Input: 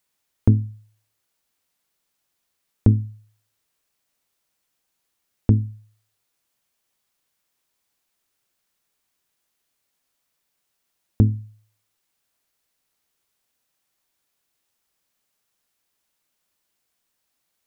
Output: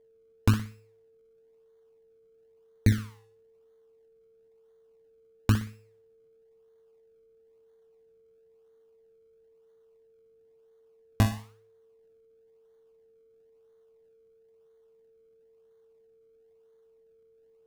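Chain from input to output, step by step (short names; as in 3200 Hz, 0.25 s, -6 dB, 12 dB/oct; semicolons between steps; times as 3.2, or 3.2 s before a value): decimation with a swept rate 33×, swing 100% 1 Hz; flutter echo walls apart 10.3 m, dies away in 0.35 s; whine 450 Hz -53 dBFS; gain -6.5 dB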